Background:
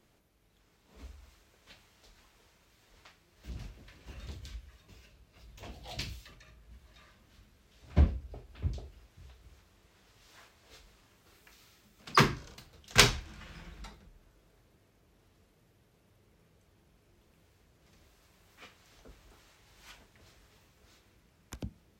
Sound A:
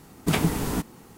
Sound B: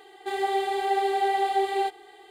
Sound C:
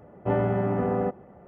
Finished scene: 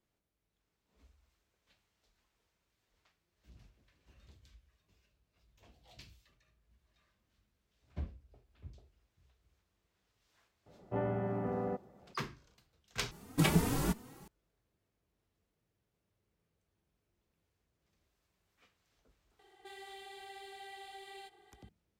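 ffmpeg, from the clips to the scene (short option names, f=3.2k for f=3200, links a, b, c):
-filter_complex "[0:a]volume=-16.5dB[a];[1:a]asplit=2[b][c];[c]adelay=3.1,afreqshift=2.7[d];[b][d]amix=inputs=2:normalize=1[e];[2:a]acrossover=split=130|1800[f][g][h];[g]acompressor=threshold=-40dB:ratio=5:attack=21:release=112:knee=2.83:detection=peak[i];[f][i][h]amix=inputs=3:normalize=0[j];[a]asplit=2[k][l];[k]atrim=end=13.114[m];[e]atrim=end=1.17,asetpts=PTS-STARTPTS,volume=-2.5dB[n];[l]atrim=start=14.276[o];[3:a]atrim=end=1.47,asetpts=PTS-STARTPTS,volume=-10.5dB,afade=t=in:d=0.004:c=hsin,afade=t=out:st=1.466:d=0.004:c=hsin,adelay=470106S[p];[j]atrim=end=2.3,asetpts=PTS-STARTPTS,volume=-14.5dB,afade=t=in:d=0.004:c=hsin,afade=t=out:st=2.296:d=0.004:c=hsin,adelay=19390[q];[m][n]acrossfade=d=0.004:c1=hsin:c2=hsin[r];[r][o]acrossfade=d=0.004:c1=hsin:c2=hsin[s];[s][p][q]amix=inputs=3:normalize=0"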